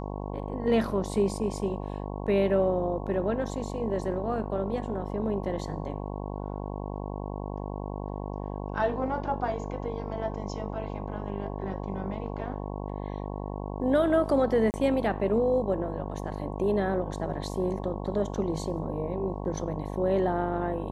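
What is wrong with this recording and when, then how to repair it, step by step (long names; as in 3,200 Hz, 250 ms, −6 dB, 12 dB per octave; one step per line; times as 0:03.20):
mains buzz 50 Hz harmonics 22 −35 dBFS
0:14.71–0:14.74: drop-out 29 ms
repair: hum removal 50 Hz, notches 22
repair the gap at 0:14.71, 29 ms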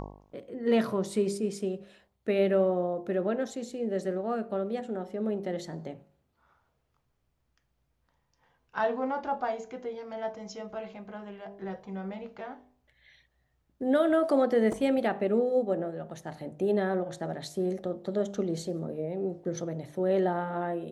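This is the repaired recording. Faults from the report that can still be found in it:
none of them is left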